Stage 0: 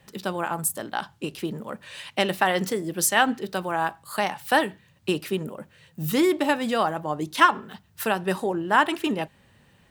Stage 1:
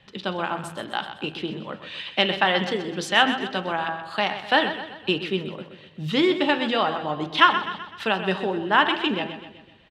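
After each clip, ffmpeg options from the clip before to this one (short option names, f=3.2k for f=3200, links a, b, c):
-filter_complex "[0:a]lowpass=f=3.4k:t=q:w=2.4,bandreject=f=81.34:t=h:w=4,bandreject=f=162.68:t=h:w=4,bandreject=f=244.02:t=h:w=4,bandreject=f=325.36:t=h:w=4,bandreject=f=406.7:t=h:w=4,bandreject=f=488.04:t=h:w=4,bandreject=f=569.38:t=h:w=4,bandreject=f=650.72:t=h:w=4,bandreject=f=732.06:t=h:w=4,bandreject=f=813.4:t=h:w=4,bandreject=f=894.74:t=h:w=4,bandreject=f=976.08:t=h:w=4,bandreject=f=1.05742k:t=h:w=4,bandreject=f=1.13876k:t=h:w=4,bandreject=f=1.2201k:t=h:w=4,bandreject=f=1.30144k:t=h:w=4,bandreject=f=1.38278k:t=h:w=4,bandreject=f=1.46412k:t=h:w=4,bandreject=f=1.54546k:t=h:w=4,bandreject=f=1.6268k:t=h:w=4,bandreject=f=1.70814k:t=h:w=4,bandreject=f=1.78948k:t=h:w=4,bandreject=f=1.87082k:t=h:w=4,bandreject=f=1.95216k:t=h:w=4,bandreject=f=2.0335k:t=h:w=4,bandreject=f=2.11484k:t=h:w=4,bandreject=f=2.19618k:t=h:w=4,bandreject=f=2.27752k:t=h:w=4,bandreject=f=2.35886k:t=h:w=4,bandreject=f=2.4402k:t=h:w=4,bandreject=f=2.52154k:t=h:w=4,bandreject=f=2.60288k:t=h:w=4,bandreject=f=2.68422k:t=h:w=4,bandreject=f=2.76556k:t=h:w=4,bandreject=f=2.8469k:t=h:w=4,bandreject=f=2.92824k:t=h:w=4,bandreject=f=3.00958k:t=h:w=4,bandreject=f=3.09092k:t=h:w=4,bandreject=f=3.17226k:t=h:w=4,asplit=2[a][b];[b]aecho=0:1:127|254|381|508|635:0.282|0.141|0.0705|0.0352|0.0176[c];[a][c]amix=inputs=2:normalize=0"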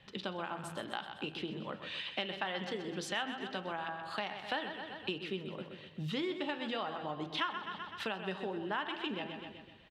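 -af "acompressor=threshold=-33dB:ratio=3,volume=-4.5dB"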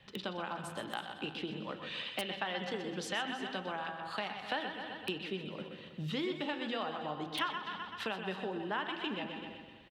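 -filter_complex "[0:a]aecho=1:1:123|321:0.282|0.2,acrossover=split=390|2600[a][b][c];[c]aeval=exprs='(mod(33.5*val(0)+1,2)-1)/33.5':c=same[d];[a][b][d]amix=inputs=3:normalize=0"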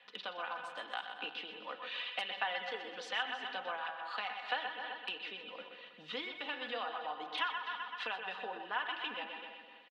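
-af "aecho=1:1:4.1:0.57,aphaser=in_gain=1:out_gain=1:delay=4:decay=0.22:speed=0.82:type=sinusoidal,highpass=690,lowpass=3.8k"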